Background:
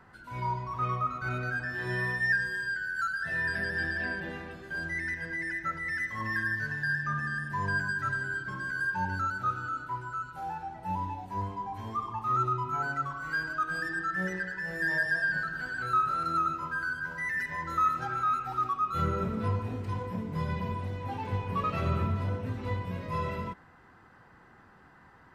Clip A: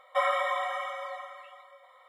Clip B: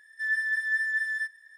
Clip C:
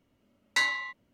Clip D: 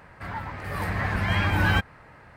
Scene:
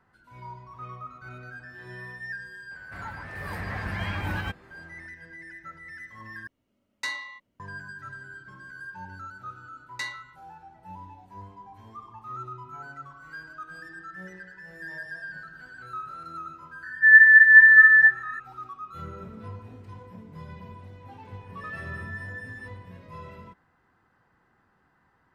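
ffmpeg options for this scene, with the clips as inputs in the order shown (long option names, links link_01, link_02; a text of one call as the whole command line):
ffmpeg -i bed.wav -i cue0.wav -i cue1.wav -i cue2.wav -i cue3.wav -filter_complex "[3:a]asplit=2[link_01][link_02];[2:a]asplit=2[link_03][link_04];[0:a]volume=-10dB[link_05];[4:a]alimiter=limit=-14dB:level=0:latency=1:release=211[link_06];[link_02]tremolo=f=1.8:d=0.68[link_07];[link_03]lowpass=frequency=1800:width_type=q:width=8.6[link_08];[link_04]acontrast=33[link_09];[link_05]asplit=2[link_10][link_11];[link_10]atrim=end=6.474[link_12];[link_01]atrim=end=1.13,asetpts=PTS-STARTPTS,volume=-6dB[link_13];[link_11]atrim=start=7.596[link_14];[link_06]atrim=end=2.36,asetpts=PTS-STARTPTS,volume=-6.5dB,afade=type=in:duration=0.004:curve=hsin,afade=type=out:start_time=2.356:duration=0.004:curve=hsin,adelay=2710[link_15];[link_07]atrim=end=1.13,asetpts=PTS-STARTPTS,volume=-7.5dB,afade=type=in:duration=0.004:curve=hsin,afade=type=out:start_time=1.126:duration=0.004:curve=hsin,adelay=9430[link_16];[link_08]atrim=end=1.57,asetpts=PTS-STARTPTS,volume=-2.5dB,afade=type=in:duration=0.004:curve=hsin,afade=type=out:start_time=1.566:duration=0.004:curve=hsin,adelay=16830[link_17];[link_09]atrim=end=1.57,asetpts=PTS-STARTPTS,volume=-17.5dB,afade=type=in:duration=0.004:curve=hsin,afade=type=out:start_time=1.566:duration=0.004:curve=hsin,adelay=21410[link_18];[link_12][link_13]acrossfade=duration=0.004:curve1=hsin:curve2=hsin[link_19];[link_19][link_14]acrossfade=duration=0.004:curve1=hsin:curve2=hsin[link_20];[link_20][link_15][link_16][link_17][link_18]amix=inputs=5:normalize=0" out.wav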